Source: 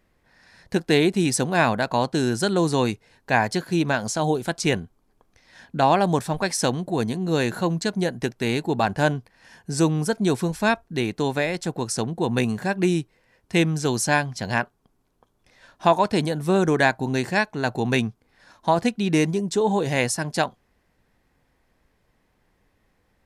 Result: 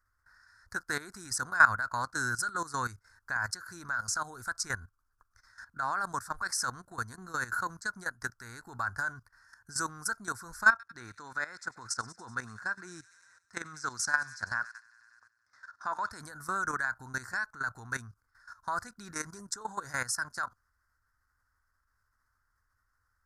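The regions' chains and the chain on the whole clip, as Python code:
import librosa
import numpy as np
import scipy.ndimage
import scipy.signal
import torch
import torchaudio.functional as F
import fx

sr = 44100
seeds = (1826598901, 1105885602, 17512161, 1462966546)

y = fx.chain(x, sr, fx.bandpass_edges(low_hz=150.0, high_hz=6300.0),
    fx.echo_wet_highpass(ms=95, feedback_pct=72, hz=2500.0, wet_db=-15), at=(10.7, 16.11))
y = fx.curve_eq(y, sr, hz=(100.0, 160.0, 240.0, 420.0, 780.0, 1400.0, 2900.0, 4900.0), db=(0, -20, -16, -19, -12, 14, -28, 2))
y = fx.level_steps(y, sr, step_db=15)
y = F.gain(torch.from_numpy(y), -1.5).numpy()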